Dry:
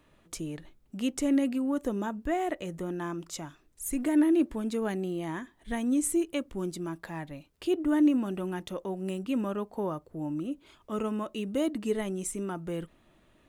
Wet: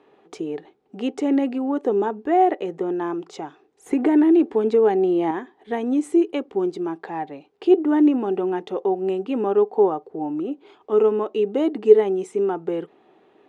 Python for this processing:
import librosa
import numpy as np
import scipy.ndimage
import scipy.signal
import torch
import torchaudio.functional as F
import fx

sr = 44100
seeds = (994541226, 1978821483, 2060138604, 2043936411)

y = fx.bandpass_edges(x, sr, low_hz=230.0, high_hz=3900.0)
y = fx.small_body(y, sr, hz=(420.0, 770.0), ring_ms=40, db=17)
y = fx.band_squash(y, sr, depth_pct=70, at=(3.86, 5.31))
y = F.gain(torch.from_numpy(y), 3.0).numpy()